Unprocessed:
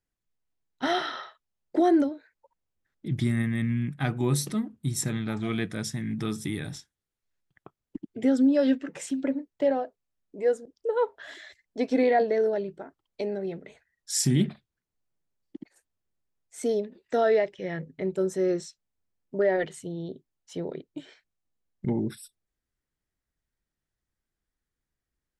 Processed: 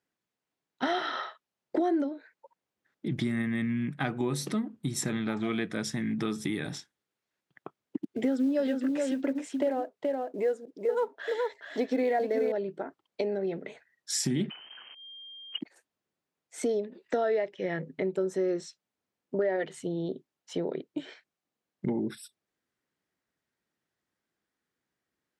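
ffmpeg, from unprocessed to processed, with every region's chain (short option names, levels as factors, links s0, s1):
-filter_complex "[0:a]asettb=1/sr,asplit=3[s0][s1][s2];[s0]atrim=end=8.034[s3];[s1]atrim=start=8.03:end=12.52,asetpts=PTS-STARTPTS,afade=t=in:d=0.004:c=qsin,afade=t=out:st=4.486:d=0.004:c=qsin,acrusher=bits=8:mode=log:mix=0:aa=0.000001,aecho=1:1:426:0.473,atrim=end_sample=198009[s4];[s2]atrim=start=12.516[s5];[s3][s4]acrossfade=d=0.004:c1=hsin:c2=qsin[s6];[s6][s5]acrossfade=d=0.004:c1=qsin:c2=hsin,asettb=1/sr,asplit=3[s7][s8][s9];[s7]atrim=end=14.504[s10];[s8]atrim=start=14.5:end=15.61,asetpts=PTS-STARTPTS,afade=t=in:d=0.004:c=qsin,afade=t=out:st=1.106:d=0.004:c=qsin,aeval=exprs='val(0)+0.5*0.00531*sgn(val(0))':c=same,lowpass=f=2700:t=q:w=0.5098,lowpass=f=2700:t=q:w=0.6013,lowpass=f=2700:t=q:w=0.9,lowpass=f=2700:t=q:w=2.563,afreqshift=-3200[s11];[s9]atrim=start=15.606[s12];[s10][s11]acrossfade=d=0.004:c1=hsin:c2=qsin[s13];[s13][s12]acrossfade=d=0.004:c1=qsin:c2=hsin,highpass=200,highshelf=f=6600:g=-11.5,acompressor=threshold=0.0178:ratio=3,volume=2.11"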